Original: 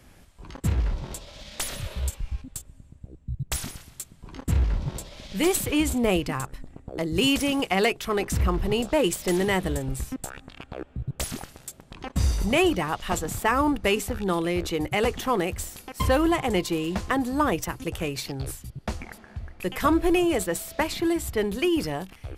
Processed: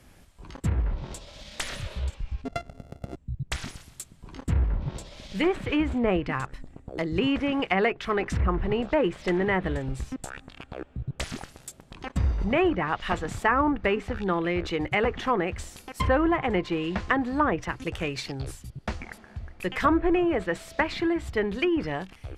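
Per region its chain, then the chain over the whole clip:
0:02.45–0:03.16: samples sorted by size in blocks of 64 samples + parametric band 280 Hz +14 dB 2.6 octaves
whole clip: treble cut that deepens with the level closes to 1,700 Hz, closed at −19.5 dBFS; dynamic equaliser 1,800 Hz, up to +6 dB, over −44 dBFS, Q 1.2; level −1.5 dB

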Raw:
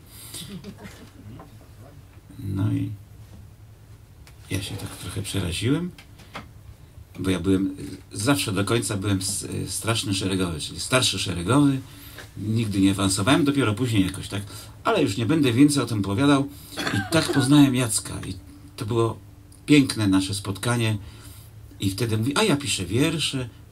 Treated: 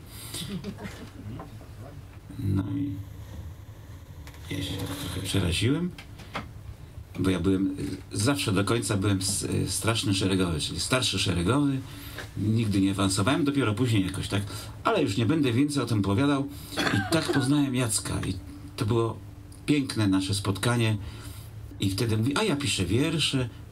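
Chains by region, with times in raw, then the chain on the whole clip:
0:02.61–0:05.29: EQ curve with evenly spaced ripples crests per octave 1.1, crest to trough 7 dB + downward compressor 5 to 1, threshold −32 dBFS + single-tap delay 70 ms −5 dB
0:21.71–0:22.79: downward compressor 2.5 to 1, threshold −24 dBFS + one half of a high-frequency compander decoder only
whole clip: high-shelf EQ 5,400 Hz −5 dB; downward compressor 12 to 1, threshold −23 dBFS; every ending faded ahead of time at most 280 dB per second; level +3 dB

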